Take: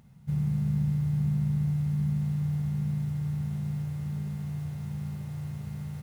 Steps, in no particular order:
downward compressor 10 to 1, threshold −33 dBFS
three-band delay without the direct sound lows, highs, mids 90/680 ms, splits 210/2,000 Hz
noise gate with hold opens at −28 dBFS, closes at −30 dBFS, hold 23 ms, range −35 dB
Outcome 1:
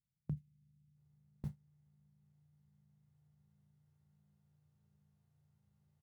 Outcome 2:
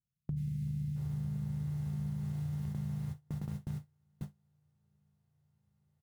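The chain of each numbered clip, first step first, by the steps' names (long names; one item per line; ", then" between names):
three-band delay without the direct sound, then downward compressor, then noise gate with hold
three-band delay without the direct sound, then noise gate with hold, then downward compressor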